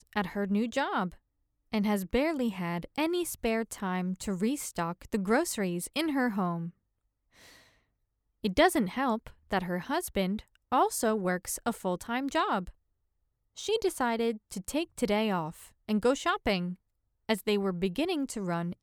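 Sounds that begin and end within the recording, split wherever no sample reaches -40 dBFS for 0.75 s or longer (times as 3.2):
8.44–12.7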